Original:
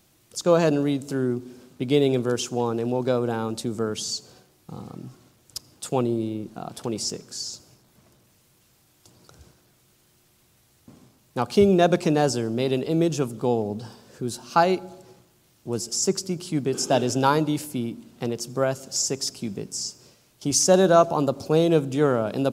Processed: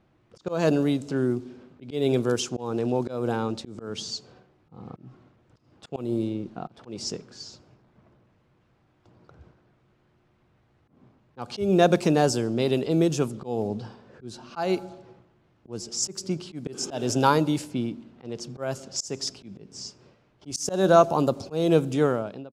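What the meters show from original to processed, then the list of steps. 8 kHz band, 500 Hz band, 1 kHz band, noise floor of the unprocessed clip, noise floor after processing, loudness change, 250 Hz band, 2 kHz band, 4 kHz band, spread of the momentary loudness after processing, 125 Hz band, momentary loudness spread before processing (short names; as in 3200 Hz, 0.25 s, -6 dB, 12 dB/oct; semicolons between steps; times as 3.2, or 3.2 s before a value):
-6.5 dB, -3.0 dB, -2.5 dB, -62 dBFS, -65 dBFS, -2.0 dB, -2.0 dB, -2.0 dB, -3.5 dB, 19 LU, -2.0 dB, 15 LU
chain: ending faded out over 0.57 s; low-pass opened by the level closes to 1700 Hz, open at -18.5 dBFS; auto swell 0.201 s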